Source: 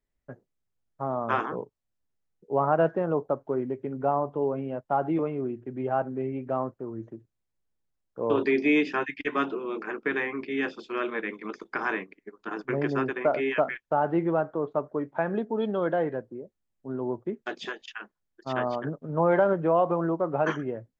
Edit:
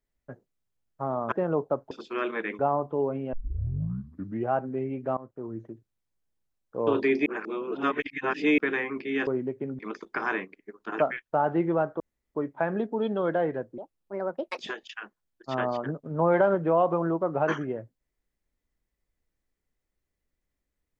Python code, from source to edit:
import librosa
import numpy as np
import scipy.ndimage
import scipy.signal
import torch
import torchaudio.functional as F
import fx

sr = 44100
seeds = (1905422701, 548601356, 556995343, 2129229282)

y = fx.edit(x, sr, fx.cut(start_s=1.32, length_s=1.59),
    fx.swap(start_s=3.5, length_s=0.52, other_s=10.7, other_length_s=0.68),
    fx.tape_start(start_s=4.76, length_s=1.19),
    fx.fade_in_from(start_s=6.6, length_s=0.29, floor_db=-20.5),
    fx.reverse_span(start_s=8.69, length_s=1.32),
    fx.cut(start_s=12.58, length_s=0.99),
    fx.room_tone_fill(start_s=14.58, length_s=0.35),
    fx.speed_span(start_s=16.36, length_s=1.21, speed=1.5), tone=tone)